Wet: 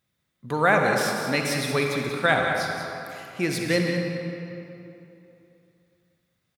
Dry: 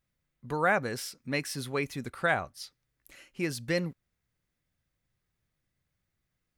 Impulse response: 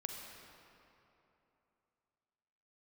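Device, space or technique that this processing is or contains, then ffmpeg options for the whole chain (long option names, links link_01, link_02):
PA in a hall: -filter_complex "[0:a]highpass=100,equalizer=frequency=3600:width_type=o:width=0.21:gain=7,aecho=1:1:185:0.355[link_01];[1:a]atrim=start_sample=2205[link_02];[link_01][link_02]afir=irnorm=-1:irlink=0,volume=8.5dB"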